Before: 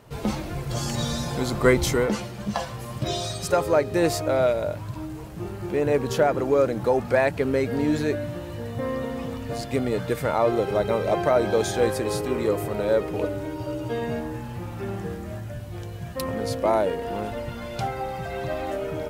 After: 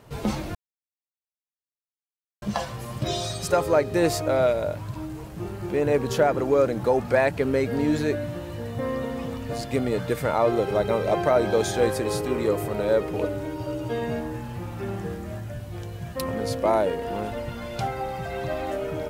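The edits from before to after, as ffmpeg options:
-filter_complex "[0:a]asplit=3[a][b][c];[a]atrim=end=0.55,asetpts=PTS-STARTPTS,afade=t=out:st=0.546:d=0.004:c=hsin[d];[b]atrim=start=0.55:end=2.42,asetpts=PTS-STARTPTS,volume=0[e];[c]atrim=start=2.42,asetpts=PTS-STARTPTS,afade=t=in:d=0.004:c=hsin[f];[d][e][f]concat=n=3:v=0:a=1"

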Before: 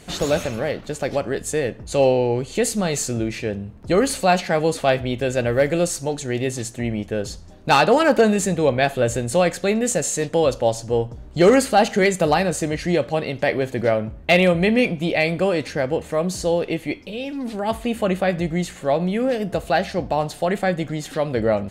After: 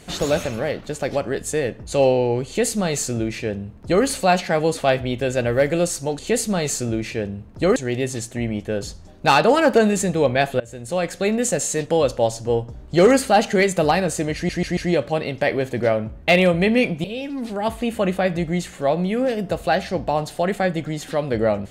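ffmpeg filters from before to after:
-filter_complex "[0:a]asplit=8[a][b][c][d][e][f][g][h];[a]atrim=end=6.192[i];[b]atrim=start=2.468:end=4.042[j];[c]atrim=start=6.188:end=9.03,asetpts=PTS-STARTPTS,afade=t=out:st=2.838:d=0.004:c=hsin:silence=0.0668344[k];[d]atrim=start=9.03:end=12.922,asetpts=PTS-STARTPTS,afade=t=in:d=0.72:silence=0.0668344[l];[e]atrim=start=12.778:end=12.922[m];[f]atrim=start=12.778:end=12.922[n];[g]atrim=start=12.778:end=15.052[o];[h]atrim=start=17.068[p];[i][j]acrossfade=d=0.004:c1=hsin:c2=hsin[q];[k][l]concat=n=2:v=0:a=1[r];[q][r]acrossfade=d=0.004:c1=hsin:c2=hsin[s];[s][m]acrossfade=d=0.004:c1=hsin:c2=hsin[t];[t][n]acrossfade=d=0.004:c1=hsin:c2=hsin[u];[u][o]acrossfade=d=0.004:c1=hsin:c2=hsin[v];[v][p]acrossfade=d=0.004:c1=hsin:c2=hsin"

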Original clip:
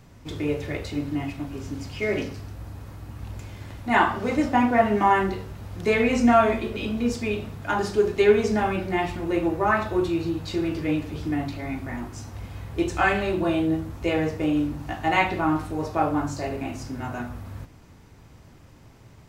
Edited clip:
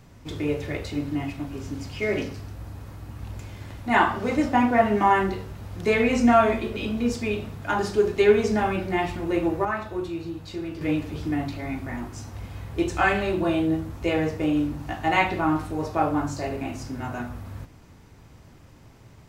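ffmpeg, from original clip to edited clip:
-filter_complex "[0:a]asplit=3[a][b][c];[a]atrim=end=9.652[d];[b]atrim=start=9.648:end=10.812,asetpts=PTS-STARTPTS,volume=-6.5dB[e];[c]atrim=start=10.808[f];[d][e]acrossfade=d=0.004:c1=hsin:c2=hsin[g];[g][f]acrossfade=d=0.004:c1=hsin:c2=hsin"

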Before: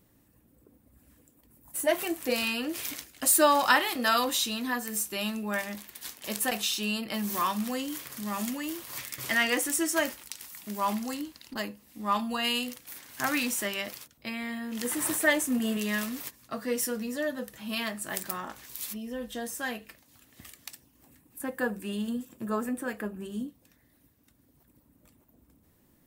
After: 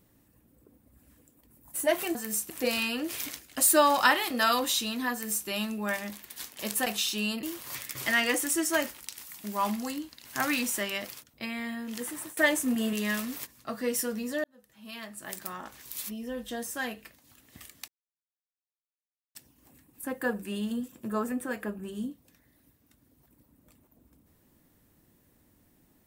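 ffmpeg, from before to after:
-filter_complex "[0:a]asplit=8[a][b][c][d][e][f][g][h];[a]atrim=end=2.152[i];[b]atrim=start=4.778:end=5.132[j];[c]atrim=start=2.148:end=7.082[k];[d]atrim=start=8.658:end=11.482[l];[e]atrim=start=13.088:end=15.21,asetpts=PTS-STARTPTS,afade=t=out:st=1.502:d=0.62:silence=0.0891251[m];[f]atrim=start=15.21:end=17.28,asetpts=PTS-STARTPTS,afade=t=in:d=0.004:c=hsin:silence=0.0891251,afade=t=out:st=2.066:d=0.004:c=hsin[n];[g]atrim=start=17.28:end=20.72,asetpts=PTS-STARTPTS,afade=t=in:d=1.61,afade=t=out:st=3.436:d=0.004:c=hsin,apad=pad_dur=1.47[o];[h]atrim=start=20.72,asetpts=PTS-STARTPTS,afade=t=in:d=0.004:c=hsin[p];[i][j]acrossfade=d=0.004:c1=hsin:c2=hsin[q];[q][k]acrossfade=d=0.004:c1=hsin:c2=hsin[r];[r][l]acrossfade=d=0.004:c1=hsin:c2=hsin[s];[m][n][o][p]concat=n=4:v=0:a=1[t];[s][t]acrossfade=d=0.004:c1=hsin:c2=hsin"

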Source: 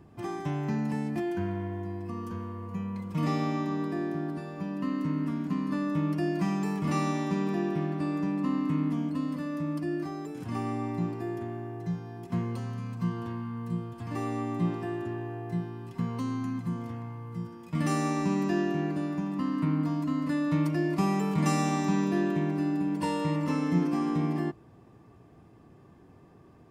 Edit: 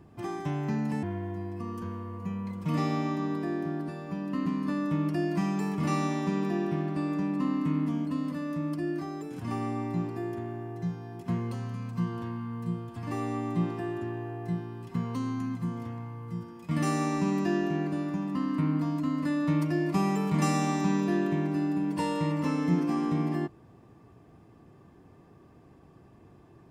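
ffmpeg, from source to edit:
-filter_complex "[0:a]asplit=3[a][b][c];[a]atrim=end=1.032[d];[b]atrim=start=1.518:end=4.952[e];[c]atrim=start=5.498[f];[d][e]acrossfade=d=0.004:c1=hsin:c2=hsin[g];[g][f]acrossfade=d=0.004:c1=hsin:c2=hsin"

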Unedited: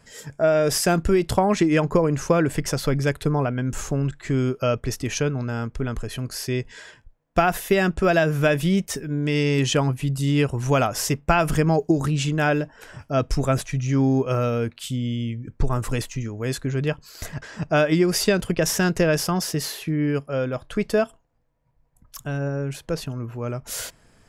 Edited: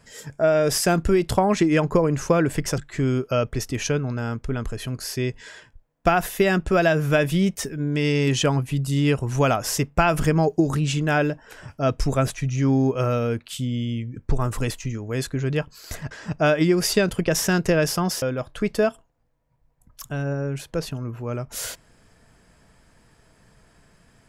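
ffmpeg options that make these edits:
-filter_complex "[0:a]asplit=3[a][b][c];[a]atrim=end=2.782[d];[b]atrim=start=4.088:end=19.532[e];[c]atrim=start=20.368[f];[d][e]acrossfade=d=0.004:c1=hsin:c2=hsin[g];[g][f]acrossfade=d=0.004:c1=hsin:c2=hsin"

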